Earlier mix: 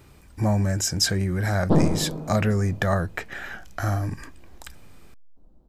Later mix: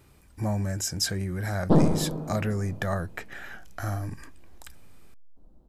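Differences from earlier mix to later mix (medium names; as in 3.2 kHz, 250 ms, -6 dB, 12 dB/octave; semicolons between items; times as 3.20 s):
speech -6.0 dB; master: add peaking EQ 11 kHz +5 dB 0.64 oct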